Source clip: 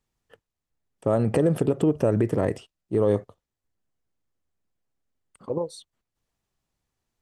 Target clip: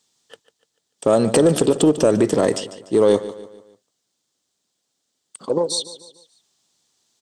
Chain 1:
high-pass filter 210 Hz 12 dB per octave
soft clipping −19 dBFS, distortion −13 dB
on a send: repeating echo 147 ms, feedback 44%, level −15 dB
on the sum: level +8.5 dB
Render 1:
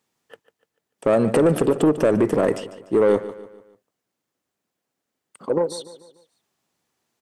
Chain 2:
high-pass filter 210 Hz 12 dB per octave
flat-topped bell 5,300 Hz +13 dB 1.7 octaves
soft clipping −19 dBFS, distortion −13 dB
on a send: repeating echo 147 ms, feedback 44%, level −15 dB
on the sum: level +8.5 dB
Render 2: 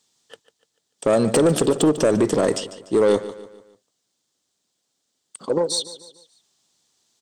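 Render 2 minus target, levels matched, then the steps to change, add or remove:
soft clipping: distortion +8 dB
change: soft clipping −13 dBFS, distortion −21 dB

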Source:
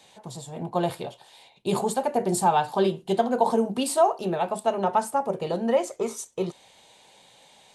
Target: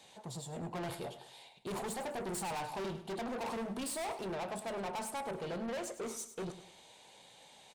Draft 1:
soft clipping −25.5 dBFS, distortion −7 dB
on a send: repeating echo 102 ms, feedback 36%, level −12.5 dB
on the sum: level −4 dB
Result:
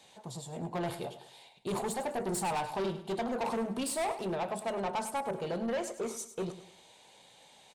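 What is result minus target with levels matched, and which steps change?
soft clipping: distortion −4 dB
change: soft clipping −33 dBFS, distortion −3 dB

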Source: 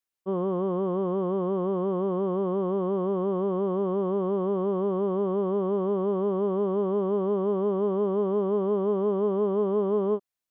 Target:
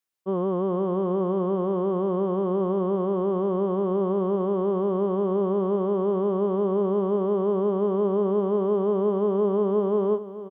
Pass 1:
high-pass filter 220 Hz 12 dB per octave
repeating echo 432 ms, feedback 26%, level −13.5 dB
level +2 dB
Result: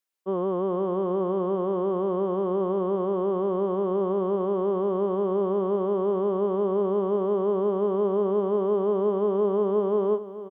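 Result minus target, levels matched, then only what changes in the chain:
125 Hz band −3.5 dB
change: high-pass filter 66 Hz 12 dB per octave

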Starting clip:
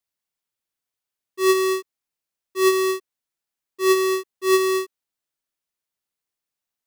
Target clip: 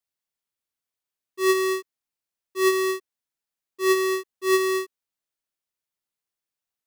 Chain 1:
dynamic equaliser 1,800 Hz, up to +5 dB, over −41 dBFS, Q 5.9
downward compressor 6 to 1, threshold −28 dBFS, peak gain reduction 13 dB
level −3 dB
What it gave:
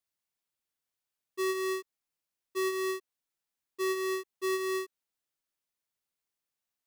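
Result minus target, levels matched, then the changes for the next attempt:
downward compressor: peak gain reduction +13 dB
remove: downward compressor 6 to 1, threshold −28 dBFS, peak gain reduction 13 dB

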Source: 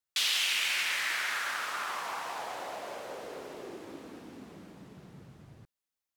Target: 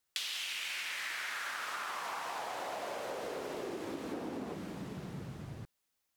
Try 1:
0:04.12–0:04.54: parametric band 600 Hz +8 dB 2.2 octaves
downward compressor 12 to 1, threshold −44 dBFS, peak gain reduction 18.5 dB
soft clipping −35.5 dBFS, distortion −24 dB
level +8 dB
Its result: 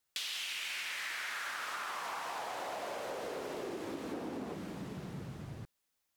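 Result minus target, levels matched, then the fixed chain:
soft clipping: distortion +12 dB
0:04.12–0:04.54: parametric band 600 Hz +8 dB 2.2 octaves
downward compressor 12 to 1, threshold −44 dBFS, peak gain reduction 18.5 dB
soft clipping −26 dBFS, distortion −36 dB
level +8 dB

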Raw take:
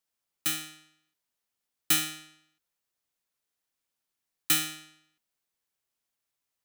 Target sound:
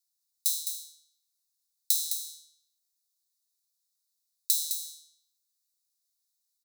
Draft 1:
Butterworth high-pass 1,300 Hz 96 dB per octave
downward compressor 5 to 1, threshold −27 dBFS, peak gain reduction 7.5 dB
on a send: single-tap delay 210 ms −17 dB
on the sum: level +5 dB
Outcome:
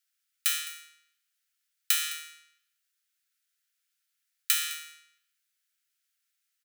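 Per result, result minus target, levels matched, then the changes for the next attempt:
echo-to-direct −10 dB; 4,000 Hz band +3.0 dB
change: single-tap delay 210 ms −7 dB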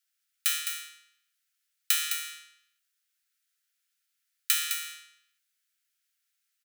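4,000 Hz band +3.0 dB
change: Butterworth high-pass 3,700 Hz 96 dB per octave

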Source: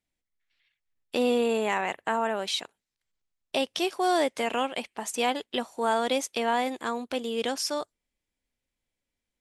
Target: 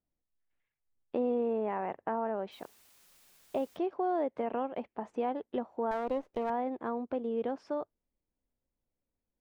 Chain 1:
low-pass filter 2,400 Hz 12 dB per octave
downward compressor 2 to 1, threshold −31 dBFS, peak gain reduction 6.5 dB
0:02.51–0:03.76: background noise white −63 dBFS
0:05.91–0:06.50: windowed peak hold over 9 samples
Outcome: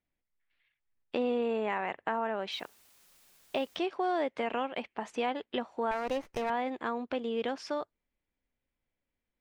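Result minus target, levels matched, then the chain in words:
2,000 Hz band +9.0 dB
low-pass filter 870 Hz 12 dB per octave
downward compressor 2 to 1, threshold −31 dBFS, peak gain reduction 6 dB
0:02.51–0:03.76: background noise white −63 dBFS
0:05.91–0:06.50: windowed peak hold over 9 samples

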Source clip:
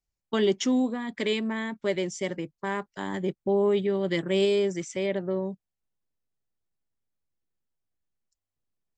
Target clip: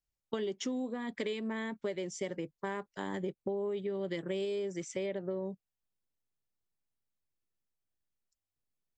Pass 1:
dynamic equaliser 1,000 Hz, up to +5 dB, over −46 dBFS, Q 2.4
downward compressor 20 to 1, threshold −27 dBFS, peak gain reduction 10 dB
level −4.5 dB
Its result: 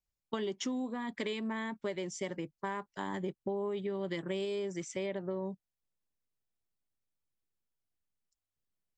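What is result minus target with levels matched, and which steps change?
1,000 Hz band +3.5 dB
change: dynamic equaliser 480 Hz, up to +5 dB, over −46 dBFS, Q 2.4

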